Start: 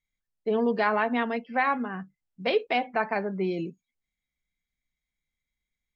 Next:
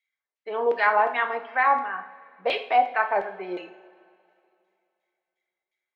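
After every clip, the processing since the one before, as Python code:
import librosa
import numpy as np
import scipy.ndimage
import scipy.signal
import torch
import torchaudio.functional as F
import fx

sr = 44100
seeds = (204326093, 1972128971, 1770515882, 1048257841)

y = fx.filter_lfo_bandpass(x, sr, shape='saw_down', hz=2.8, low_hz=550.0, high_hz=2700.0, q=1.3)
y = fx.bass_treble(y, sr, bass_db=-13, treble_db=1)
y = fx.rev_double_slope(y, sr, seeds[0], early_s=0.48, late_s=2.6, knee_db=-18, drr_db=5.5)
y = y * librosa.db_to_amplitude(6.5)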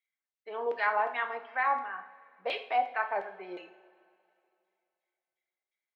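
y = fx.low_shelf(x, sr, hz=350.0, db=-6.0)
y = y * librosa.db_to_amplitude(-7.0)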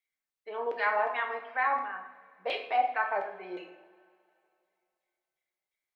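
y = fx.room_shoebox(x, sr, seeds[1], volume_m3=140.0, walls='mixed', distance_m=0.45)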